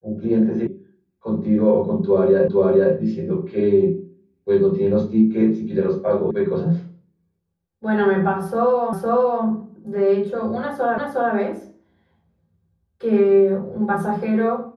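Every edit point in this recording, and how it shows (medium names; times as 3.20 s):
0.67 s: sound stops dead
2.48 s: repeat of the last 0.46 s
6.31 s: sound stops dead
8.93 s: repeat of the last 0.51 s
10.98 s: repeat of the last 0.36 s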